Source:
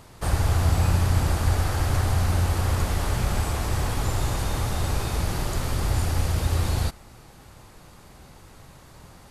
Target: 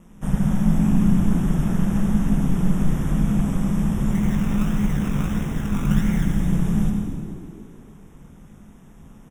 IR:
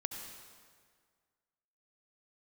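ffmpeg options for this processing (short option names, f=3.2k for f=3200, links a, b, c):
-filter_complex "[0:a]equalizer=f=95:t=o:w=2.6:g=14.5,asplit=3[a][b][c];[a]afade=t=out:st=4.11:d=0.02[d];[b]acrusher=samples=29:mix=1:aa=0.000001:lfo=1:lforange=17.4:lforate=1.6,afade=t=in:st=4.11:d=0.02,afade=t=out:st=6.23:d=0.02[e];[c]afade=t=in:st=6.23:d=0.02[f];[d][e][f]amix=inputs=3:normalize=0,flanger=delay=16:depth=3.5:speed=1.3,aeval=exprs='val(0)*sin(2*PI*91*n/s)':c=same,asuperstop=centerf=4400:order=8:qfactor=2.7,asplit=8[g][h][i][j][k][l][m][n];[h]adelay=151,afreqshift=37,volume=-15dB[o];[i]adelay=302,afreqshift=74,volume=-18.7dB[p];[j]adelay=453,afreqshift=111,volume=-22.5dB[q];[k]adelay=604,afreqshift=148,volume=-26.2dB[r];[l]adelay=755,afreqshift=185,volume=-30dB[s];[m]adelay=906,afreqshift=222,volume=-33.7dB[t];[n]adelay=1057,afreqshift=259,volume=-37.5dB[u];[g][o][p][q][r][s][t][u]amix=inputs=8:normalize=0[v];[1:a]atrim=start_sample=2205[w];[v][w]afir=irnorm=-1:irlink=0,volume=-1.5dB"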